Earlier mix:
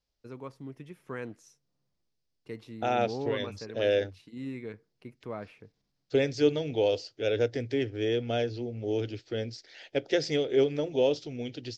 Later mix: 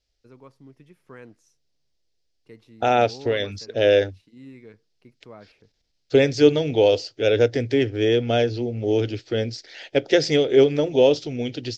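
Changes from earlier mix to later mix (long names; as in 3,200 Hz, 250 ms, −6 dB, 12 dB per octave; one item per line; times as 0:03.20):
first voice −5.5 dB
second voice +9.0 dB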